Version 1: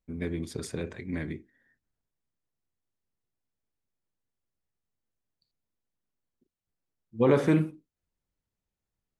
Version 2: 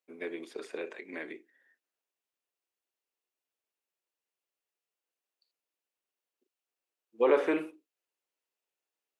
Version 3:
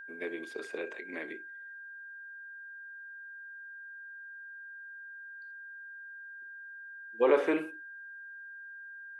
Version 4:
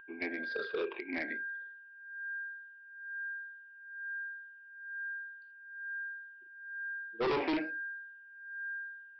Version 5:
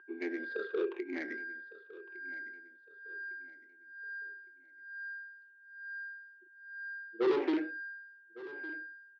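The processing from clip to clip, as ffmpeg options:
-filter_complex "[0:a]acrossover=split=2900[a][b];[b]acompressor=threshold=-57dB:ratio=4:attack=1:release=60[c];[a][c]amix=inputs=2:normalize=0,highpass=f=370:w=0.5412,highpass=f=370:w=1.3066,equalizer=f=2.7k:t=o:w=0.36:g=6.5"
-af "aeval=exprs='val(0)+0.00631*sin(2*PI*1600*n/s)':c=same"
-af "afftfilt=real='re*pow(10,16/40*sin(2*PI*(0.67*log(max(b,1)*sr/1024/100)/log(2)-(-1.1)*(pts-256)/sr)))':imag='im*pow(10,16/40*sin(2*PI*(0.67*log(max(b,1)*sr/1024/100)/log(2)-(-1.1)*(pts-256)/sr)))':win_size=1024:overlap=0.75,aresample=11025,volume=29dB,asoftclip=hard,volume=-29dB,aresample=44100"
-af "adynamicsmooth=sensitivity=3.5:basefreq=2.1k,highpass=270,equalizer=f=360:t=q:w=4:g=9,equalizer=f=660:t=q:w=4:g=-9,equalizer=f=990:t=q:w=4:g=-5,equalizer=f=2.4k:t=q:w=4:g=-6,lowpass=f=5k:w=0.5412,lowpass=f=5k:w=1.3066,aecho=1:1:1158|2316|3474:0.126|0.0428|0.0146"

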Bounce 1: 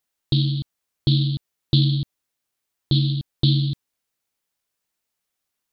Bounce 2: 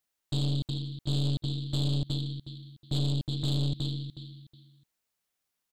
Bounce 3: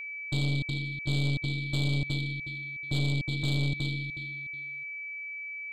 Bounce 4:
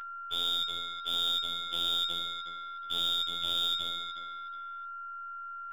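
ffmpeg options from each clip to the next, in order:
-filter_complex "[0:a]asplit=2[a][b];[b]aecho=0:1:367|734|1101:0.282|0.0705|0.0176[c];[a][c]amix=inputs=2:normalize=0,alimiter=limit=-16dB:level=0:latency=1:release=17,aeval=exprs='(tanh(17.8*val(0)+0.6)-tanh(0.6))/17.8':c=same"
-af "aeval=exprs='val(0)+0.0158*sin(2*PI*2300*n/s)':c=same"
-af "lowpass=f=3.1k:t=q:w=0.5098,lowpass=f=3.1k:t=q:w=0.6013,lowpass=f=3.1k:t=q:w=0.9,lowpass=f=3.1k:t=q:w=2.563,afreqshift=-3700,aeval=exprs='0.126*(cos(1*acos(clip(val(0)/0.126,-1,1)))-cos(1*PI/2))+0.0178*(cos(2*acos(clip(val(0)/0.126,-1,1)))-cos(2*PI/2))+0.00562*(cos(3*acos(clip(val(0)/0.126,-1,1)))-cos(3*PI/2))+0.0158*(cos(4*acos(clip(val(0)/0.126,-1,1)))-cos(4*PI/2))+0.01*(cos(6*acos(clip(val(0)/0.126,-1,1)))-cos(6*PI/2))':c=same,afftfilt=real='hypot(re,im)*cos(PI*b)':imag='0':win_size=2048:overlap=0.75,volume=4dB"

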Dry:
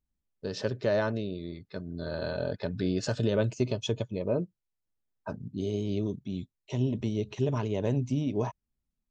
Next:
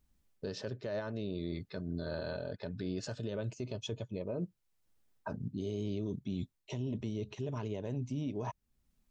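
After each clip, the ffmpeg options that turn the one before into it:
-af "areverse,acompressor=threshold=-36dB:ratio=6,areverse,alimiter=level_in=14.5dB:limit=-24dB:level=0:latency=1:release=495,volume=-14.5dB,volume=10.5dB"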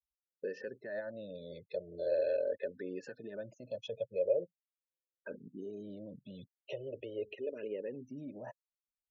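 -filter_complex "[0:a]afftfilt=real='re*gte(hypot(re,im),0.00355)':imag='im*gte(hypot(re,im),0.00355)':win_size=1024:overlap=0.75,asplit=3[a][b][c];[a]bandpass=f=530:t=q:w=8,volume=0dB[d];[b]bandpass=f=1.84k:t=q:w=8,volume=-6dB[e];[c]bandpass=f=2.48k:t=q:w=8,volume=-9dB[f];[d][e][f]amix=inputs=3:normalize=0,asplit=2[g][h];[h]afreqshift=-0.41[i];[g][i]amix=inputs=2:normalize=1,volume=14.5dB"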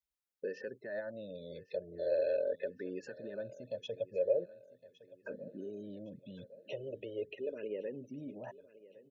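-af "aecho=1:1:1112|2224|3336|4448:0.112|0.0539|0.0259|0.0124"

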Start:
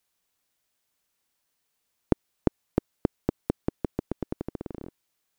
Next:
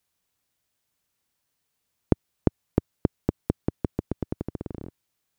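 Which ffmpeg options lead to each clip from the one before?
-af "equalizer=f=100:t=o:w=2:g=8,volume=-1dB"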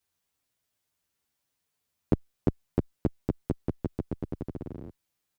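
-filter_complex "[0:a]asplit=2[a][b];[b]adelay=9.6,afreqshift=-1[c];[a][c]amix=inputs=2:normalize=1"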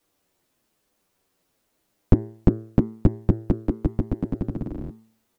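-af "equalizer=f=760:w=0.79:g=12,afreqshift=-400,bandreject=f=111.1:t=h:w=4,bandreject=f=222.2:t=h:w=4,bandreject=f=333.3:t=h:w=4,bandreject=f=444.4:t=h:w=4,bandreject=f=555.5:t=h:w=4,bandreject=f=666.6:t=h:w=4,bandreject=f=777.7:t=h:w=4,bandreject=f=888.8:t=h:w=4,bandreject=f=999.9:t=h:w=4,bandreject=f=1.111k:t=h:w=4,bandreject=f=1.2221k:t=h:w=4,bandreject=f=1.3332k:t=h:w=4,bandreject=f=1.4443k:t=h:w=4,bandreject=f=1.5554k:t=h:w=4,bandreject=f=1.6665k:t=h:w=4,bandreject=f=1.7776k:t=h:w=4,bandreject=f=1.8887k:t=h:w=4,bandreject=f=1.9998k:t=h:w=4,bandreject=f=2.1109k:t=h:w=4,volume=7dB"

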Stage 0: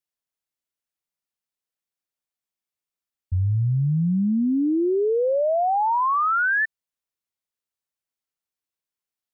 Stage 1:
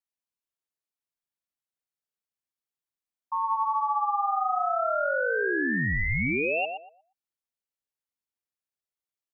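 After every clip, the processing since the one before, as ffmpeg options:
-filter_complex "[0:a]aeval=exprs='val(0)*sin(2*PI*1000*n/s)':c=same,asplit=2[a][b];[b]adelay=119,lowpass=f=1.1k:p=1,volume=-3dB,asplit=2[c][d];[d]adelay=119,lowpass=f=1.1k:p=1,volume=0.27,asplit=2[e][f];[f]adelay=119,lowpass=f=1.1k:p=1,volume=0.27,asplit=2[g][h];[h]adelay=119,lowpass=f=1.1k:p=1,volume=0.27[i];[a][c][e][g][i]amix=inputs=5:normalize=0,volume=-3.5dB"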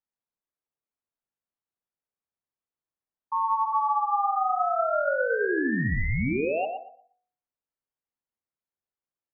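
-af "lowpass=1.4k,bandreject=f=48.7:t=h:w=4,bandreject=f=97.4:t=h:w=4,bandreject=f=146.1:t=h:w=4,bandreject=f=194.8:t=h:w=4,bandreject=f=243.5:t=h:w=4,bandreject=f=292.2:t=h:w=4,bandreject=f=340.9:t=h:w=4,bandreject=f=389.6:t=h:w=4,bandreject=f=438.3:t=h:w=4,bandreject=f=487:t=h:w=4,bandreject=f=535.7:t=h:w=4,bandreject=f=584.4:t=h:w=4,bandreject=f=633.1:t=h:w=4,bandreject=f=681.8:t=h:w=4,bandreject=f=730.5:t=h:w=4,bandreject=f=779.2:t=h:w=4,bandreject=f=827.9:t=h:w=4,bandreject=f=876.6:t=h:w=4,bandreject=f=925.3:t=h:w=4,bandreject=f=974:t=h:w=4,bandreject=f=1.0227k:t=h:w=4,bandreject=f=1.0714k:t=h:w=4,bandreject=f=1.1201k:t=h:w=4,bandreject=f=1.1688k:t=h:w=4,bandreject=f=1.2175k:t=h:w=4,bandreject=f=1.2662k:t=h:w=4,bandreject=f=1.3149k:t=h:w=4,bandreject=f=1.3636k:t=h:w=4,bandreject=f=1.4123k:t=h:w=4,bandreject=f=1.461k:t=h:w=4,bandreject=f=1.5097k:t=h:w=4,bandreject=f=1.5584k:t=h:w=4,bandreject=f=1.6071k:t=h:w=4,bandreject=f=1.6558k:t=h:w=4,bandreject=f=1.7045k:t=h:w=4,bandreject=f=1.7532k:t=h:w=4,bandreject=f=1.8019k:t=h:w=4,bandreject=f=1.8506k:t=h:w=4,bandreject=f=1.8993k:t=h:w=4,bandreject=f=1.948k:t=h:w=4,volume=3dB"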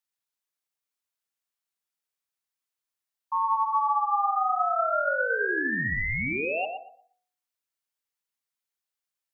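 -af "tiltshelf=f=970:g=-7.5"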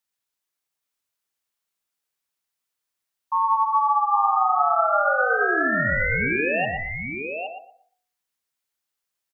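-af "aecho=1:1:815:0.473,volume=4.5dB"

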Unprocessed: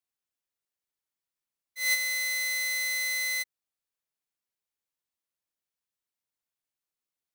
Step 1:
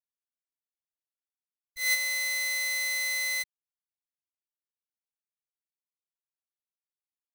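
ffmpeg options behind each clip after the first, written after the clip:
-af "anlmdn=0.000631,acrusher=bits=8:dc=4:mix=0:aa=0.000001"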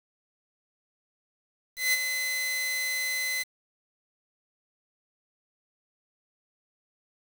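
-af "aeval=exprs='val(0)*gte(abs(val(0)),0.00944)':c=same"

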